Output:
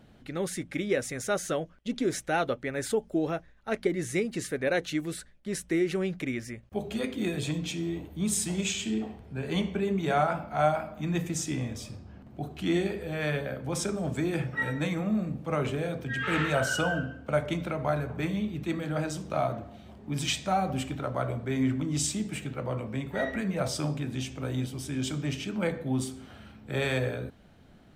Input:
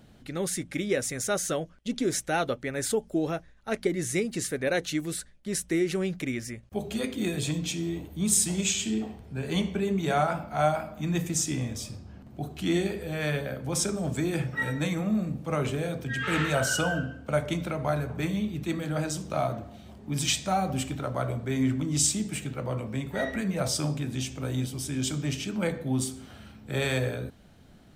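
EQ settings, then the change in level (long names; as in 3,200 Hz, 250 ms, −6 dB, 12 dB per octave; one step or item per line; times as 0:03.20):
bass and treble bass −2 dB, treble −7 dB
0.0 dB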